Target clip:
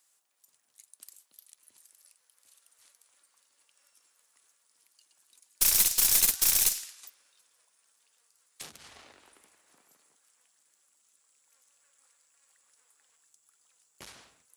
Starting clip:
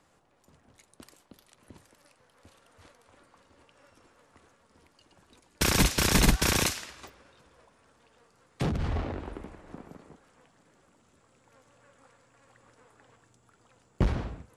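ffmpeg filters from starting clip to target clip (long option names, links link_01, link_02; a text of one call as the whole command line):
ffmpeg -i in.wav -af "aderivative,aeval=exprs='(tanh(15.8*val(0)+0.75)-tanh(0.75))/15.8':channel_layout=same,crystalizer=i=1:c=0,volume=5dB" out.wav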